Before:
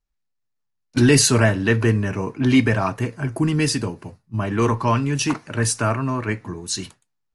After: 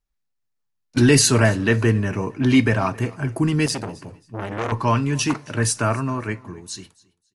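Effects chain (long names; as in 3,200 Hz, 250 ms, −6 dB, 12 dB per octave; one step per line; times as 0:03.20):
fade-out on the ending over 1.45 s
repeating echo 270 ms, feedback 24%, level −23.5 dB
0:03.66–0:04.72: saturating transformer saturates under 1,600 Hz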